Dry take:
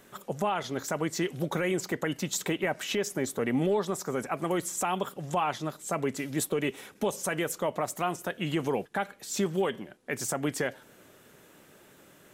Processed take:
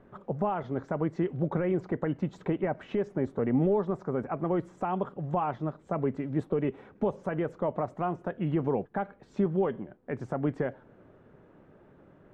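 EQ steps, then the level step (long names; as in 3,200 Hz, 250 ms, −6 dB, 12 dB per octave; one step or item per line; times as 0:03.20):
low-pass filter 1,100 Hz 12 dB per octave
low-shelf EQ 120 Hz +10 dB
0.0 dB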